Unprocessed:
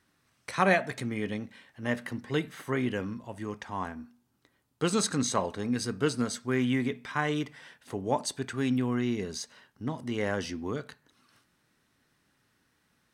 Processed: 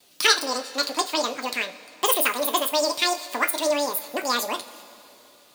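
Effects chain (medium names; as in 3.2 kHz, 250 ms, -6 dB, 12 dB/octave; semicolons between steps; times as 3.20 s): wide varispeed 2.37×; treble shelf 2.2 kHz +8.5 dB; in parallel at +3 dB: compression, threshold -36 dBFS, peak gain reduction 19.5 dB; on the sum: two-slope reverb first 0.2 s, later 3.3 s, from -21 dB, DRR 6 dB; gate with hold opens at -48 dBFS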